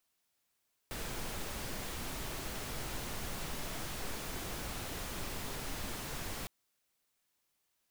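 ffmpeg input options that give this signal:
-f lavfi -i "anoisesrc=c=pink:a=0.0513:d=5.56:r=44100:seed=1"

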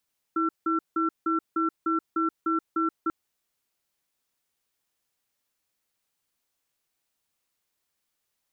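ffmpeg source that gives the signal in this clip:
-f lavfi -i "aevalsrc='0.0562*(sin(2*PI*325*t)+sin(2*PI*1350*t))*clip(min(mod(t,0.3),0.13-mod(t,0.3))/0.005,0,1)':d=2.74:s=44100"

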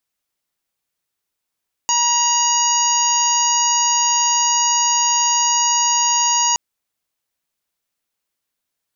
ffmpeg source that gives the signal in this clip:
-f lavfi -i "aevalsrc='0.119*sin(2*PI*953*t)+0.02*sin(2*PI*1906*t)+0.0562*sin(2*PI*2859*t)+0.0158*sin(2*PI*3812*t)+0.0531*sin(2*PI*4765*t)+0.0422*sin(2*PI*5718*t)+0.15*sin(2*PI*6671*t)':d=4.67:s=44100"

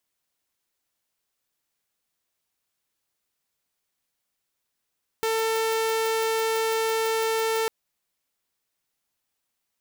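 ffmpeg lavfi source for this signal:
-f lavfi -i "aevalsrc='0.1*(2*mod(447*t,1)-1)':d=2.45:s=44100"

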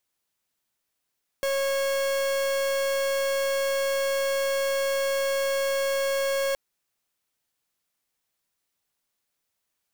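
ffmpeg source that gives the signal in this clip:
-f lavfi -i "aevalsrc='0.0531*(2*lt(mod(548*t,1),0.43)-1)':d=5.12:s=44100"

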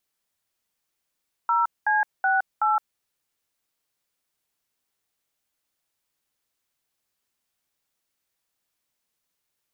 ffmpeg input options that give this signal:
-f lavfi -i "aevalsrc='0.0891*clip(min(mod(t,0.375),0.166-mod(t,0.375))/0.002,0,1)*(eq(floor(t/0.375),0)*(sin(2*PI*941*mod(t,0.375))+sin(2*PI*1336*mod(t,0.375)))+eq(floor(t/0.375),1)*(sin(2*PI*852*mod(t,0.375))+sin(2*PI*1633*mod(t,0.375)))+eq(floor(t/0.375),2)*(sin(2*PI*770*mod(t,0.375))+sin(2*PI*1477*mod(t,0.375)))+eq(floor(t/0.375),3)*(sin(2*PI*852*mod(t,0.375))+sin(2*PI*1336*mod(t,0.375))))':d=1.5:s=44100"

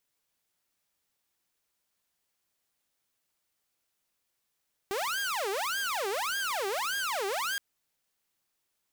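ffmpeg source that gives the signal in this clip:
-f lavfi -i "aevalsrc='0.0447*(2*mod((1002.5*t-617.5/(2*PI*1.7)*sin(2*PI*1.7*t)),1)-1)':d=2.67:s=44100"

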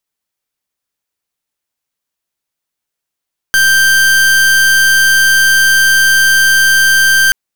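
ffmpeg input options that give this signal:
-f lavfi -i "aevalsrc='0.376*(2*lt(mod(1570*t,1),0.41)-1)':d=3.78:s=44100"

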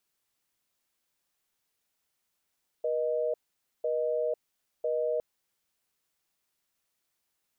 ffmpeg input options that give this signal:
-f lavfi -i "aevalsrc='0.0355*(sin(2*PI*480*t)+sin(2*PI*620*t))*clip(min(mod(t,1),0.5-mod(t,1))/0.005,0,1)':d=2.36:s=44100"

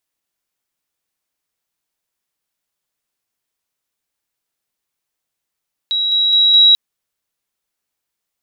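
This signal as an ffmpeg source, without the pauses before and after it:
-f lavfi -i "aevalsrc='pow(10,(-14.5+3*floor(t/0.21))/20)*sin(2*PI*3870*t)':d=0.84:s=44100"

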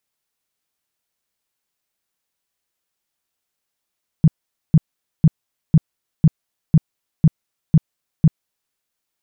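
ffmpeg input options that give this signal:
-f lavfi -i "aevalsrc='0.501*sin(2*PI*158*mod(t,0.5))*lt(mod(t,0.5),6/158)':d=4.5:s=44100"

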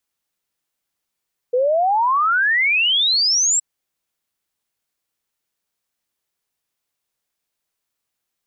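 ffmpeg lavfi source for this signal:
-f lavfi -i "aevalsrc='0.2*clip(min(t,2.07-t)/0.01,0,1)*sin(2*PI*480*2.07/log(7800/480)*(exp(log(7800/480)*t/2.07)-1))':d=2.07:s=44100"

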